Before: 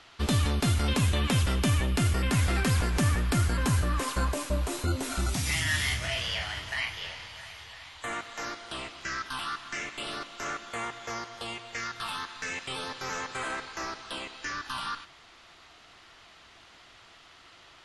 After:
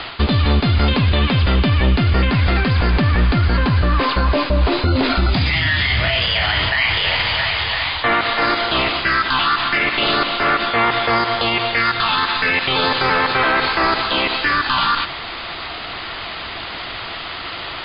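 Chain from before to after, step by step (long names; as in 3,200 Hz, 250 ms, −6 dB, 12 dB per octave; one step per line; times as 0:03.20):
Chebyshev low-pass filter 4,900 Hz, order 10
reversed playback
downward compressor 10 to 1, threshold −35 dBFS, peak gain reduction 13 dB
reversed playback
boost into a limiter +34 dB
level −7.5 dB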